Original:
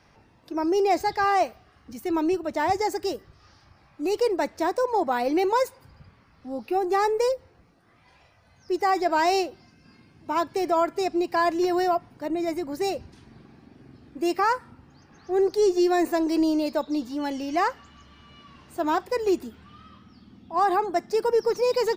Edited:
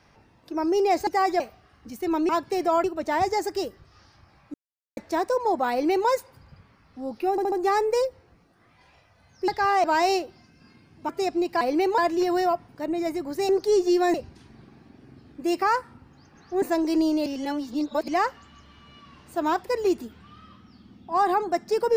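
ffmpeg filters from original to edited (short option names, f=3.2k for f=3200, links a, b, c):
-filter_complex "[0:a]asplit=20[a][b][c][d][e][f][g][h][i][j][k][l][m][n][o][p][q][r][s][t];[a]atrim=end=1.072[u];[b]atrim=start=8.748:end=9.082[v];[c]atrim=start=1.428:end=2.322[w];[d]atrim=start=10.328:end=10.882[x];[e]atrim=start=2.318:end=4.02,asetpts=PTS-STARTPTS,afade=t=out:st=1.698:d=0.004:c=hsin[y];[f]atrim=start=4.02:end=4.45,asetpts=PTS-STARTPTS,volume=0[z];[g]atrim=start=4.45:end=6.862,asetpts=PTS-STARTPTS,afade=t=in:d=0.004:c=hsin[aa];[h]atrim=start=6.788:end=6.862[ab];[i]atrim=start=6.788:end=6.862[ac];[j]atrim=start=6.788:end=8.752[ad];[k]atrim=start=1.068:end=1.432[ae];[l]atrim=start=9.078:end=10.332[af];[m]atrim=start=10.878:end=11.402[ag];[n]atrim=start=5.188:end=5.562[ah];[o]atrim=start=11.398:end=12.912[ai];[p]atrim=start=15.388:end=16.042[aj];[q]atrim=start=12.908:end=15.392[ak];[r]atrim=start=16.038:end=16.682[al];[s]atrim=start=16.678:end=17.502,asetpts=PTS-STARTPTS,areverse[am];[t]atrim=start=17.498[an];[u][v]acrossfade=d=0.004:c1=hsin:c2=hsin[ao];[ao][w]acrossfade=d=0.004:c1=hsin:c2=hsin[ap];[ap][x]acrossfade=d=0.004:c1=hsin:c2=hsin[aq];[y][z][aa]concat=n=3:v=0:a=1[ar];[aq][ar]acrossfade=d=0.004:c1=hsin:c2=hsin[as];[as][ab]acrossfade=d=0.004:c1=hsin:c2=hsin[at];[at][ac]acrossfade=d=0.004:c1=hsin:c2=hsin[au];[au][ad]acrossfade=d=0.004:c1=hsin:c2=hsin[av];[av][ae]acrossfade=d=0.004:c1=hsin:c2=hsin[aw];[aw][af]acrossfade=d=0.004:c1=hsin:c2=hsin[ax];[ax][ag]acrossfade=d=0.004:c1=hsin:c2=hsin[ay];[ay][ah]acrossfade=d=0.004:c1=hsin:c2=hsin[az];[az][ai]acrossfade=d=0.004:c1=hsin:c2=hsin[ba];[ba][aj]acrossfade=d=0.004:c1=hsin:c2=hsin[bb];[bb][ak]acrossfade=d=0.004:c1=hsin:c2=hsin[bc];[bc][al]acrossfade=d=0.004:c1=hsin:c2=hsin[bd];[bd][am]acrossfade=d=0.004:c1=hsin:c2=hsin[be];[be][an]acrossfade=d=0.004:c1=hsin:c2=hsin"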